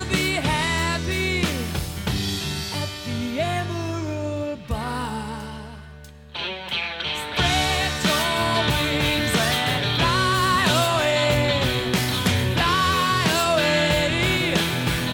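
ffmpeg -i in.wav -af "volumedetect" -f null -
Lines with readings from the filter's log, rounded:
mean_volume: -22.7 dB
max_volume: -7.2 dB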